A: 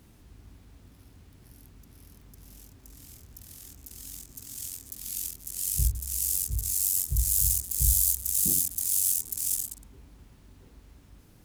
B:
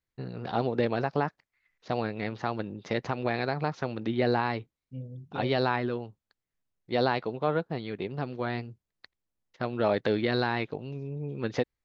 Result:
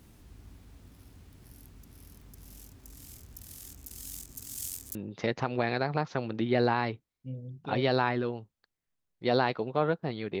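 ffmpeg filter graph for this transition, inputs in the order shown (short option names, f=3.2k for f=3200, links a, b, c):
-filter_complex "[0:a]apad=whole_dur=10.4,atrim=end=10.4,atrim=end=4.952[a];[1:a]atrim=start=2.618:end=8.07[b];[a][b]acrossfade=d=0.004:c1=hsin:c2=hsin"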